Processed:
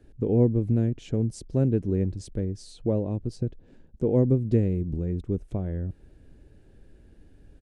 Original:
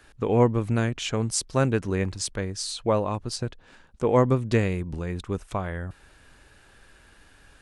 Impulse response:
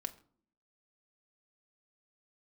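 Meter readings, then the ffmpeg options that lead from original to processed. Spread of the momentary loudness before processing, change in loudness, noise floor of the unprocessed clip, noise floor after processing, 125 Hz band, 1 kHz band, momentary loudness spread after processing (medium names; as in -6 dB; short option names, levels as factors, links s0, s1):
11 LU, -1.0 dB, -56 dBFS, -55 dBFS, +1.5 dB, -16.5 dB, 10 LU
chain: -filter_complex "[0:a]firequalizer=gain_entry='entry(330,0);entry(1100,-26);entry(1700,-21)':delay=0.05:min_phase=1,asplit=2[s0][s1];[s1]acompressor=threshold=0.0224:ratio=6,volume=0.75[s2];[s0][s2]amix=inputs=2:normalize=0"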